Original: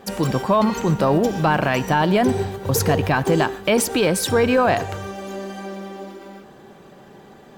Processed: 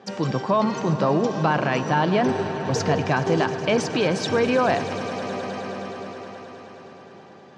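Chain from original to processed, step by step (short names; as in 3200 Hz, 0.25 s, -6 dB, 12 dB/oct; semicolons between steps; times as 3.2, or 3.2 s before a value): elliptic band-pass 120–5900 Hz, stop band 50 dB; swelling echo 0.105 s, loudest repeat 5, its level -17 dB; gain -3 dB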